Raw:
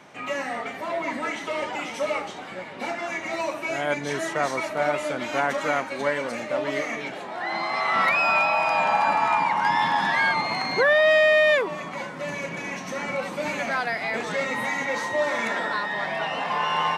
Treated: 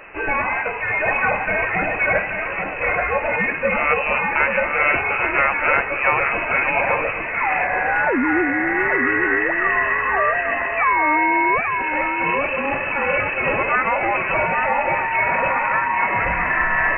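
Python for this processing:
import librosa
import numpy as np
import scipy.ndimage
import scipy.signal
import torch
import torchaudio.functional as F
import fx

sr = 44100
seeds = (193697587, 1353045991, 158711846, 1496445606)

y = fx.peak_eq(x, sr, hz=550.0, db=-8.5, octaves=1.8)
y = fx.rider(y, sr, range_db=4, speed_s=0.5)
y = y + 10.0 ** (-6.0 / 20.0) * np.pad(y, (int(833 * sr / 1000.0), 0))[:len(y)]
y = fx.freq_invert(y, sr, carrier_hz=2800)
y = y * librosa.db_to_amplitude(8.5)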